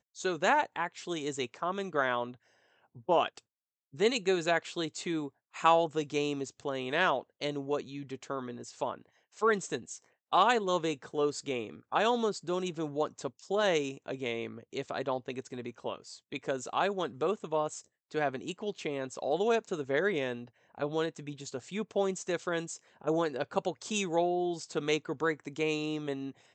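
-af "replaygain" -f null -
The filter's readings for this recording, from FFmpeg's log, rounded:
track_gain = +11.6 dB
track_peak = 0.218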